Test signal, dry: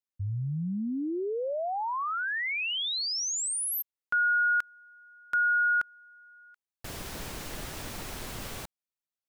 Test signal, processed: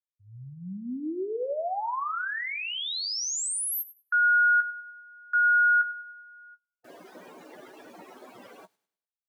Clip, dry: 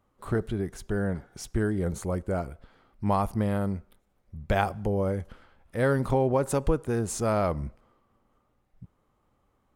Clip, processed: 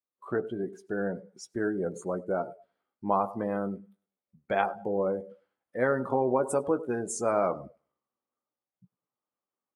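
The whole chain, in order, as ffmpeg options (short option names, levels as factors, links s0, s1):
-filter_complex "[0:a]asplit=2[s0][s1];[s1]adelay=16,volume=0.376[s2];[s0][s2]amix=inputs=2:normalize=0,asplit=2[s3][s4];[s4]aecho=0:1:100|200|300|400:0.168|0.0722|0.031|0.0133[s5];[s3][s5]amix=inputs=2:normalize=0,adynamicequalizer=threshold=0.0112:dfrequency=2400:dqfactor=0.96:tfrequency=2400:tqfactor=0.96:attack=5:release=100:ratio=0.375:range=2:mode=cutabove:tftype=bell,highpass=280,bandreject=f=431.5:t=h:w=4,bandreject=f=863:t=h:w=4,bandreject=f=1294.5:t=h:w=4,bandreject=f=1726:t=h:w=4,bandreject=f=2157.5:t=h:w=4,bandreject=f=2589:t=h:w=4,bandreject=f=3020.5:t=h:w=4,bandreject=f=3452:t=h:w=4,bandreject=f=3883.5:t=h:w=4,bandreject=f=4315:t=h:w=4,bandreject=f=4746.5:t=h:w=4,bandreject=f=5178:t=h:w=4,bandreject=f=5609.5:t=h:w=4,bandreject=f=6041:t=h:w=4,bandreject=f=6472.5:t=h:w=4,bandreject=f=6904:t=h:w=4,bandreject=f=7335.5:t=h:w=4,bandreject=f=7767:t=h:w=4,bandreject=f=8198.5:t=h:w=4,bandreject=f=8630:t=h:w=4,bandreject=f=9061.5:t=h:w=4,bandreject=f=9493:t=h:w=4,bandreject=f=9924.5:t=h:w=4,bandreject=f=10356:t=h:w=4,bandreject=f=10787.5:t=h:w=4,bandreject=f=11219:t=h:w=4,bandreject=f=11650.5:t=h:w=4,bandreject=f=12082:t=h:w=4,bandreject=f=12513.5:t=h:w=4,bandreject=f=12945:t=h:w=4,bandreject=f=13376.5:t=h:w=4,bandreject=f=13808:t=h:w=4,bandreject=f=14239.5:t=h:w=4,aeval=exprs='0.376*(cos(1*acos(clip(val(0)/0.376,-1,1)))-cos(1*PI/2))+0.00237*(cos(2*acos(clip(val(0)/0.376,-1,1)))-cos(2*PI/2))':c=same,dynaudnorm=f=150:g=3:m=2.51,afftdn=nr=22:nf=-30,volume=0.422"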